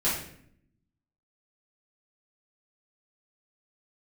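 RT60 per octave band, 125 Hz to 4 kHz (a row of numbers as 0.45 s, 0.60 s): 1.2 s, 1.1 s, 0.70 s, 0.55 s, 0.60 s, 0.50 s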